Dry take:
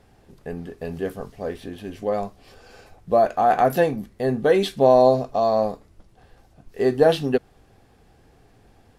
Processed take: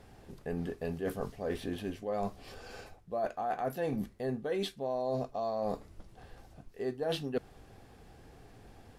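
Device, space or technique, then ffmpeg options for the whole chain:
compression on the reversed sound: -af "areverse,acompressor=threshold=-31dB:ratio=10,areverse"

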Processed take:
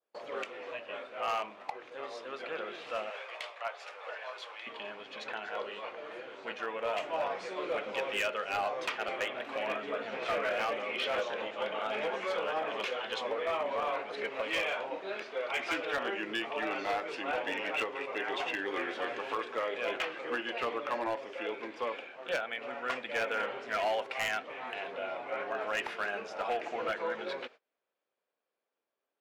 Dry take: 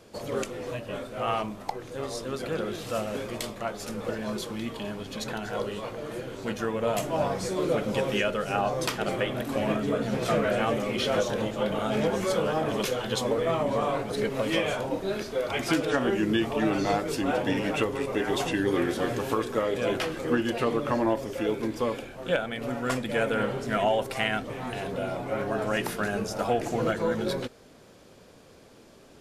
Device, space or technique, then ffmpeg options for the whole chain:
walkie-talkie: -filter_complex "[0:a]adynamicequalizer=threshold=0.00355:dfrequency=2500:dqfactor=1.9:tfrequency=2500:tqfactor=1.9:attack=5:release=100:ratio=0.375:range=3:mode=boostabove:tftype=bell,asettb=1/sr,asplit=3[a][b][c];[a]atrim=end=3.104[d];[b]atrim=start=3.1:end=4.67,asetpts=PTS-STARTPTS,afade=t=in:d=0.004:c=qsin,afade=t=out:st=1.566:d=0.004:c=qsin,highpass=f=560:w=0.5412,highpass=f=560:w=1.3066[e];[c]atrim=start=4.666[f];[d][e]acrossfade=d=0.004:c1=hsin:c2=qsin[g];[g][f]acrossfade=d=0.004:c1=qsin:c2=hsin,highpass=600,lowpass=2.9k,asoftclip=type=hard:threshold=-23dB,agate=range=-27dB:threshold=-48dB:ratio=16:detection=peak,volume=-3dB"

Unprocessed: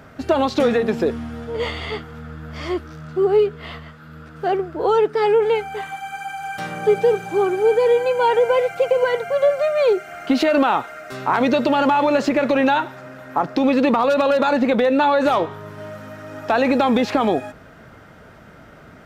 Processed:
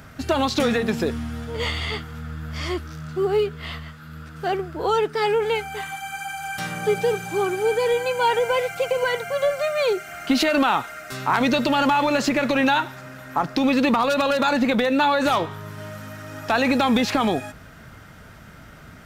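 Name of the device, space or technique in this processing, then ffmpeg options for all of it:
smiley-face EQ: -af "lowshelf=f=130:g=4.5,equalizer=f=480:t=o:w=1.9:g=-7,highshelf=f=5.1k:g=8.5,volume=1dB"

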